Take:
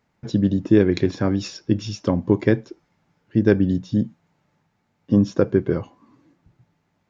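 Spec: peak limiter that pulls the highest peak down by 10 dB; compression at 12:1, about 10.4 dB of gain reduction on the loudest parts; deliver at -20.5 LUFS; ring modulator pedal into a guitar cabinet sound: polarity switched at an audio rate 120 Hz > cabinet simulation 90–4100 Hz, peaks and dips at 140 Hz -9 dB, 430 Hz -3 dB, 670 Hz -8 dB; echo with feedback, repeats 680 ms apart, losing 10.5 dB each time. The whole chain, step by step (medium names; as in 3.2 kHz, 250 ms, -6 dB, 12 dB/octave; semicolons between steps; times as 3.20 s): compression 12:1, threshold -21 dBFS; peak limiter -19.5 dBFS; feedback delay 680 ms, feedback 30%, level -10.5 dB; polarity switched at an audio rate 120 Hz; cabinet simulation 90–4100 Hz, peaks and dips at 140 Hz -9 dB, 430 Hz -3 dB, 670 Hz -8 dB; trim +14.5 dB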